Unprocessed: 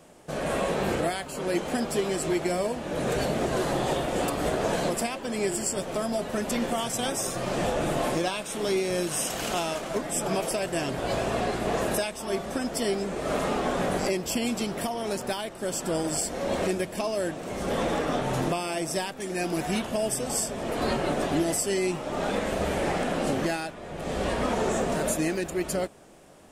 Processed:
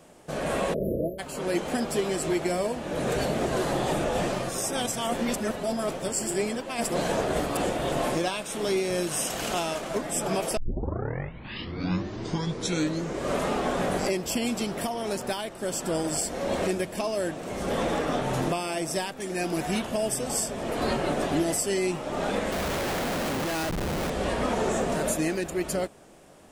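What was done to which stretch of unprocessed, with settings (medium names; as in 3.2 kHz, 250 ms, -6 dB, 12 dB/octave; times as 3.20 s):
0.74–1.19 s: spectral selection erased 680–11000 Hz
3.93–7.92 s: reverse
10.57 s: tape start 2.90 s
22.52–24.10 s: Schmitt trigger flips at -38 dBFS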